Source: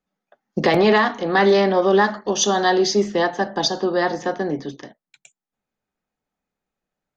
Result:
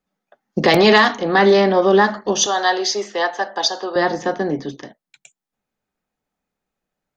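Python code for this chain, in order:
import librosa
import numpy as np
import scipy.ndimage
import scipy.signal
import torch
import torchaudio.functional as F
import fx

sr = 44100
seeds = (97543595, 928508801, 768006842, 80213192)

y = fx.high_shelf(x, sr, hz=fx.line((0.67, 3700.0), (1.15, 2700.0)), db=12.0, at=(0.67, 1.15), fade=0.02)
y = fx.highpass(y, sr, hz=590.0, slope=12, at=(2.46, 3.96))
y = F.gain(torch.from_numpy(y), 2.5).numpy()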